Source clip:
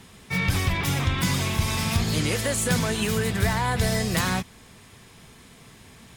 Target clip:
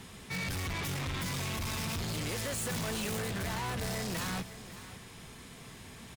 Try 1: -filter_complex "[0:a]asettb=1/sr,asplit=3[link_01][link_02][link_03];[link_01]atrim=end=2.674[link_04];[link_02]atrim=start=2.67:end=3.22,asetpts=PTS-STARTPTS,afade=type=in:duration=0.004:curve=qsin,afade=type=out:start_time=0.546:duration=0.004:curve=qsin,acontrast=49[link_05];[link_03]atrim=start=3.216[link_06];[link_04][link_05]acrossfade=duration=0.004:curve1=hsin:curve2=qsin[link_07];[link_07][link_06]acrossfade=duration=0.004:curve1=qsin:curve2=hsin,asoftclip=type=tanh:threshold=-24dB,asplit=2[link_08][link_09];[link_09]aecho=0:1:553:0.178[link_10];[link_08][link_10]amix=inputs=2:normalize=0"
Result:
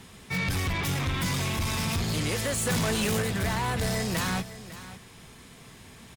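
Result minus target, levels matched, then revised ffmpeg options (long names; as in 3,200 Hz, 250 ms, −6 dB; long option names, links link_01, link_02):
soft clipping: distortion −4 dB
-filter_complex "[0:a]asettb=1/sr,asplit=3[link_01][link_02][link_03];[link_01]atrim=end=2.674[link_04];[link_02]atrim=start=2.67:end=3.22,asetpts=PTS-STARTPTS,afade=type=in:duration=0.004:curve=qsin,afade=type=out:start_time=0.546:duration=0.004:curve=qsin,acontrast=49[link_05];[link_03]atrim=start=3.216[link_06];[link_04][link_05]acrossfade=duration=0.004:curve1=hsin:curve2=qsin[link_07];[link_07][link_06]acrossfade=duration=0.004:curve1=qsin:curve2=hsin,asoftclip=type=tanh:threshold=-34dB,asplit=2[link_08][link_09];[link_09]aecho=0:1:553:0.178[link_10];[link_08][link_10]amix=inputs=2:normalize=0"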